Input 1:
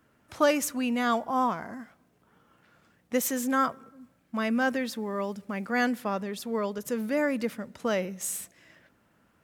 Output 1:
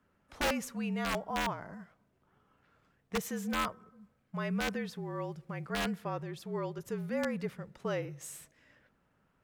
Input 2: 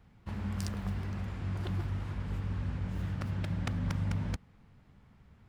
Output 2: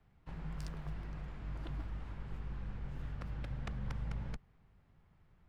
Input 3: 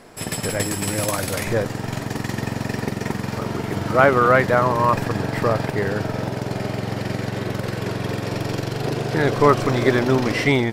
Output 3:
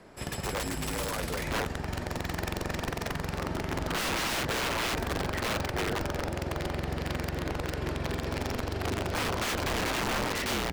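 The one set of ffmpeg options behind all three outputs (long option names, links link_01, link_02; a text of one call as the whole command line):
ffmpeg -i in.wav -af "afreqshift=-44,aeval=exprs='(mod(6.68*val(0)+1,2)-1)/6.68':channel_layout=same,highshelf=frequency=5400:gain=-9,volume=-6.5dB" out.wav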